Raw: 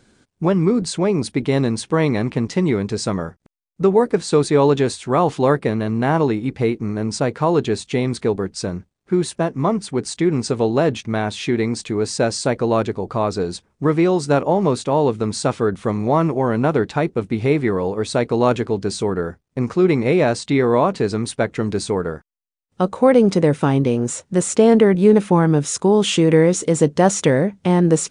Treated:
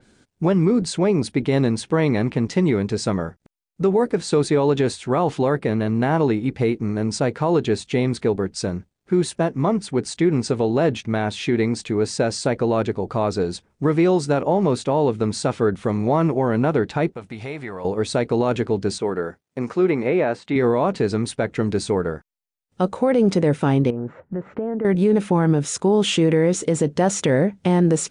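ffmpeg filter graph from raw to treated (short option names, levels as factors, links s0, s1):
-filter_complex "[0:a]asettb=1/sr,asplit=3[s0][s1][s2];[s0]atrim=end=17.124[s3];[s1]atrim=start=17.12:end=17.85,asetpts=PTS-STARTPTS,afade=t=in:d=0.004:c=qsin,afade=t=out:st=0.726:d=0.004:c=qsin,lowshelf=f=520:t=q:w=1.5:g=-7,acompressor=threshold=0.0251:ratio=2:attack=3.2:release=140:knee=1:detection=peak[s4];[s2]atrim=start=17.846[s5];[s3][s4]acrossfade=d=0.004:c1=hsin:c2=qsin[s6];[s6][s5]acrossfade=d=0.004:c1=qsin:c2=hsin,asettb=1/sr,asplit=3[s7][s8][s9];[s7]atrim=end=18.984[s10];[s8]atrim=start=18.98:end=20.56,asetpts=PTS-STARTPTS,afade=t=in:d=0.004:c=qsin,afade=t=out:st=1.576:d=0.004:c=qsin,highpass=f=320:p=1,acrossover=split=2700[s11][s12];[s12]acompressor=threshold=0.00398:ratio=4:attack=1:release=60[s13];[s11][s13]amix=inputs=2:normalize=0[s14];[s9]atrim=start=20.556[s15];[s10][s14]acrossfade=d=0.004:c1=hsin:c2=qsin[s16];[s16][s15]acrossfade=d=0.004:c1=qsin:c2=hsin,asettb=1/sr,asplit=3[s17][s18][s19];[s17]atrim=end=23.904[s20];[s18]atrim=start=23.9:end=24.85,asetpts=PTS-STARTPTS,afade=t=in:d=0.004:c=qsin,afade=t=out:st=0.946:d=0.004:c=qsin,lowpass=f=1700:w=0.5412,lowpass=f=1700:w=1.3066,acompressor=threshold=0.0631:ratio=4:attack=3.2:release=140:knee=1:detection=peak[s21];[s19]atrim=start=24.846[s22];[s20][s21]acrossfade=d=0.004:c1=hsin:c2=qsin[s23];[s23][s22]acrossfade=d=0.004:c1=qsin:c2=hsin,equalizer=f=1100:t=o:w=0.27:g=-3.5,alimiter=limit=0.335:level=0:latency=1:release=54,adynamicequalizer=threshold=0.01:dfrequency=4000:dqfactor=0.7:tfrequency=4000:tqfactor=0.7:attack=5:release=100:ratio=0.375:range=2:mode=cutabove:tftype=highshelf"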